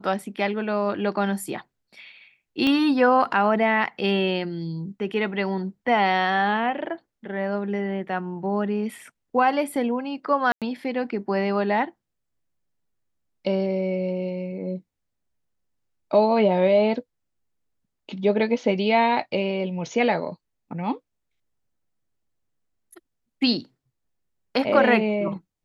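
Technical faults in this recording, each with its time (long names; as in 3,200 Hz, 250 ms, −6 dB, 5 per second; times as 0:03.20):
0:02.67: click −12 dBFS
0:10.52–0:10.62: drop-out 97 ms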